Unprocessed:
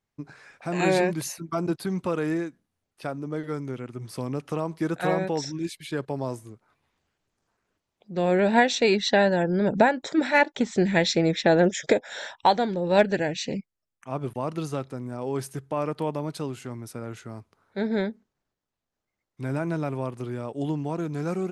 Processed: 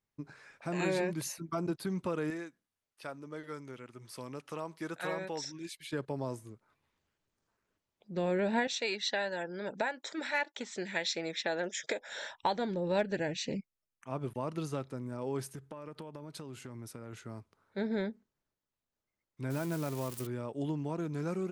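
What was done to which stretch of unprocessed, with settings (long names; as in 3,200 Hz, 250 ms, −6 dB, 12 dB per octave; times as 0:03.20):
0:02.30–0:05.93: low-shelf EQ 460 Hz −11.5 dB
0:08.67–0:12.01: high-pass filter 1,100 Hz 6 dB per octave
0:15.48–0:17.13: downward compressor 12 to 1, threshold −34 dBFS
0:19.50–0:20.27: spike at every zero crossing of −26 dBFS
whole clip: notch filter 740 Hz, Q 12; downward compressor 2 to 1, threshold −25 dBFS; level −5.5 dB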